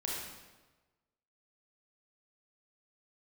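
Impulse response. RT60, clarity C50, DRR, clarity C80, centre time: 1.2 s, -1.0 dB, -4.0 dB, 2.0 dB, 80 ms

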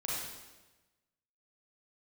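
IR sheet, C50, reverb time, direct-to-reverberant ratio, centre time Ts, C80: -2.5 dB, 1.2 s, -6.0 dB, 89 ms, 1.0 dB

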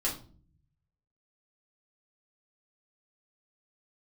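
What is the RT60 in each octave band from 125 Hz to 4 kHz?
1.4 s, 0.85 s, 0.50 s, 0.35 s, 0.30 s, 0.30 s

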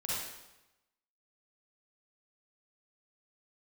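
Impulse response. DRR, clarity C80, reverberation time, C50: -8.0 dB, 0.5 dB, 0.95 s, -5.0 dB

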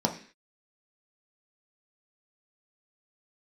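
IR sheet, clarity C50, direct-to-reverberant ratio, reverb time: 11.0 dB, 1.5 dB, 0.45 s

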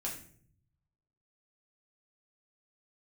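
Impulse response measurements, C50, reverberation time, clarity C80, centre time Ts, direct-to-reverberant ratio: 7.0 dB, 0.55 s, 11.0 dB, 26 ms, -3.0 dB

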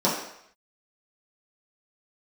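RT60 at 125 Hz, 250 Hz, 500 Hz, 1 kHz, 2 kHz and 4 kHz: 0.55 s, 0.55 s, 0.70 s, 0.75 s, 0.75 s, 0.70 s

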